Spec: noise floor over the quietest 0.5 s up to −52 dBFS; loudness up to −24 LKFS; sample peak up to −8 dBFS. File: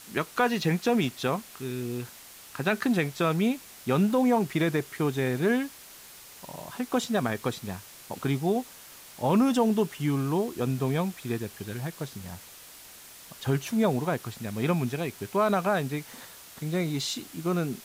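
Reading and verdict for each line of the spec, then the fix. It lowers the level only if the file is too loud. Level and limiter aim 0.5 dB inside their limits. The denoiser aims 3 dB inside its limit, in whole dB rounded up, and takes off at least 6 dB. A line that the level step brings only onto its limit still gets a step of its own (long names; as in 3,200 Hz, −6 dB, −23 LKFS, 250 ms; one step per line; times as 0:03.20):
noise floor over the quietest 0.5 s −48 dBFS: out of spec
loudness −28.0 LKFS: in spec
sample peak −11.5 dBFS: in spec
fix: broadband denoise 7 dB, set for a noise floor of −48 dBFS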